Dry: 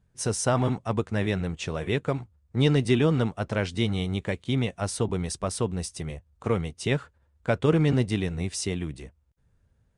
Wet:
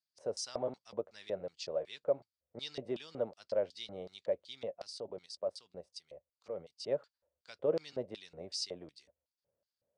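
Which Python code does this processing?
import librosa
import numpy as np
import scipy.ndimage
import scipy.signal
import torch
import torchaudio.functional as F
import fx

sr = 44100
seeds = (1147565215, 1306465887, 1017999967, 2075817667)

y = scipy.signal.sosfilt(scipy.signal.butter(4, 53.0, 'highpass', fs=sr, output='sos'), x)
y = fx.level_steps(y, sr, step_db=10, at=(4.72, 6.87), fade=0.02)
y = fx.filter_lfo_bandpass(y, sr, shape='square', hz=2.7, low_hz=570.0, high_hz=4700.0, q=8.0)
y = y * librosa.db_to_amplitude(4.0)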